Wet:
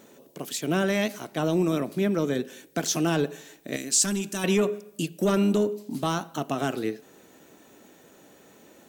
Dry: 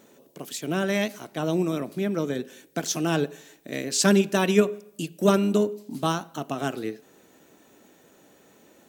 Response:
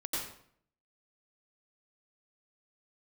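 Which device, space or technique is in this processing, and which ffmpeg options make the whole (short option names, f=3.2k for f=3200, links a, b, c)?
soft clipper into limiter: -filter_complex "[0:a]asoftclip=type=tanh:threshold=-11dB,alimiter=limit=-18dB:level=0:latency=1:release=20,asettb=1/sr,asplit=3[a][b][c];[a]atrim=end=3.764[d];[b]atrim=start=3.76:end=4.44,asetpts=PTS-STARTPTS,afade=t=in:d=0.004:c=qsin,afade=t=out:st=0.676:d=0.004:c=qsin,equalizer=f=125:t=o:w=1:g=-10,equalizer=f=500:t=o:w=1:g=-12,equalizer=f=1k:t=o:w=1:g=-5,equalizer=f=2k:t=o:w=1:g=-5,equalizer=f=4k:t=o:w=1:g=-3,equalizer=f=8k:t=o:w=1:g=7[e];[c]atrim=start=4.436[f];[d][e]acrossfade=d=0.004:c1=hsin:c2=qsin[g];[g][f]acrossfade=d=0.004:c1=qsin:c2=hsin,volume=2.5dB"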